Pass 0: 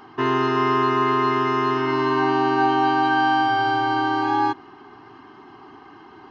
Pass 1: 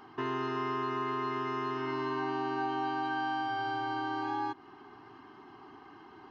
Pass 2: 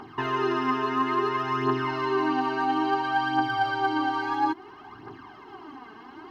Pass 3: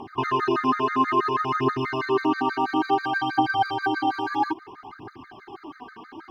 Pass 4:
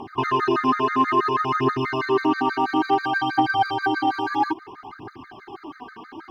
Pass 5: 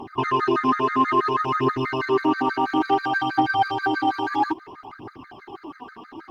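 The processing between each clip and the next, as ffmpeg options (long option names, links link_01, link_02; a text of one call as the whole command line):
ffmpeg -i in.wav -af "acompressor=threshold=-28dB:ratio=2,volume=-7.5dB" out.wav
ffmpeg -i in.wav -af "aphaser=in_gain=1:out_gain=1:delay=4.7:decay=0.61:speed=0.59:type=triangular,volume=6dB" out.wav
ffmpeg -i in.wav -af "afftfilt=real='re*gt(sin(2*PI*6.2*pts/sr)*(1-2*mod(floor(b*sr/1024/1200),2)),0)':imag='im*gt(sin(2*PI*6.2*pts/sr)*(1-2*mod(floor(b*sr/1024/1200),2)),0)':win_size=1024:overlap=0.75,volume=5dB" out.wav
ffmpeg -i in.wav -af "acontrast=48,volume=-3.5dB" out.wav
ffmpeg -i in.wav -ar 48000 -c:a libopus -b:a 24k out.opus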